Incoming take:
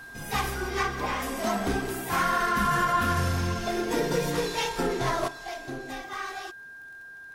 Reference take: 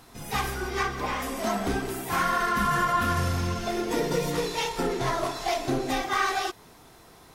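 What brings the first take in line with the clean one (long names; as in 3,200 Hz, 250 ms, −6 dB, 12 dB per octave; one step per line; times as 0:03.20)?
clipped peaks rebuilt −16.5 dBFS
click removal
notch filter 1,600 Hz, Q 30
level correction +10 dB, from 0:05.28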